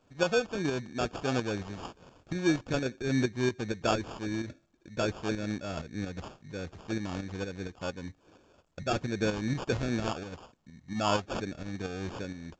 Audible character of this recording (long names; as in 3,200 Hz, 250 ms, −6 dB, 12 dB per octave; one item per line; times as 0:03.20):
aliases and images of a low sample rate 2,000 Hz, jitter 0%
tremolo saw up 4.3 Hz, depth 55%
mu-law